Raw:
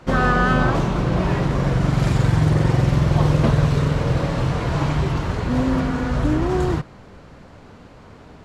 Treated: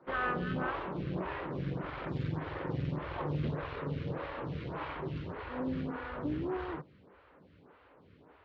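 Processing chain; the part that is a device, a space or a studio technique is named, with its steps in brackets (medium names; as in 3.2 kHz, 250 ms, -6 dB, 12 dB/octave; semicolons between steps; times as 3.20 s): vibe pedal into a guitar amplifier (lamp-driven phase shifter 1.7 Hz; valve stage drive 13 dB, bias 0.45; cabinet simulation 87–3500 Hz, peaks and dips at 120 Hz -8 dB, 220 Hz -7 dB, 690 Hz -5 dB); trim -8.5 dB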